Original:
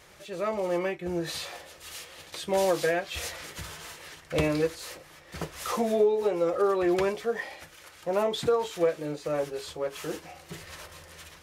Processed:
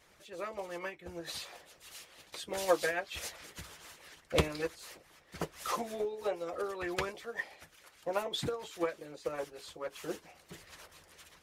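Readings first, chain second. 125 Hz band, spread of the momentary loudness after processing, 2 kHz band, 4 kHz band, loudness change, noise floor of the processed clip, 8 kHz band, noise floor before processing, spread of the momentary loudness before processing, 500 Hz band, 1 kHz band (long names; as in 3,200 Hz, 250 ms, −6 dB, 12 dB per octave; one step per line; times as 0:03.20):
−6.5 dB, 21 LU, −4.0 dB, −4.0 dB, −8.5 dB, −63 dBFS, −5.0 dB, −53 dBFS, 18 LU, −10.0 dB, −6.5 dB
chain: harmonic and percussive parts rebalanced harmonic −13 dB
expander for the loud parts 1.5 to 1, over −43 dBFS
level +3.5 dB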